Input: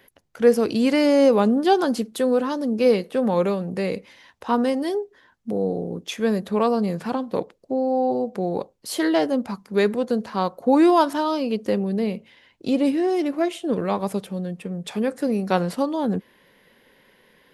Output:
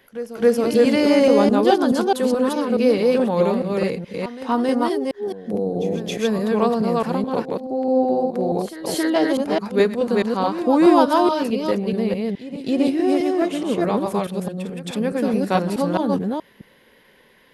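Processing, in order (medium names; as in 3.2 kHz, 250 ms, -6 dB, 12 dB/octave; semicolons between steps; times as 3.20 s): chunks repeated in reverse 213 ms, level -1 dB; pre-echo 272 ms -14 dB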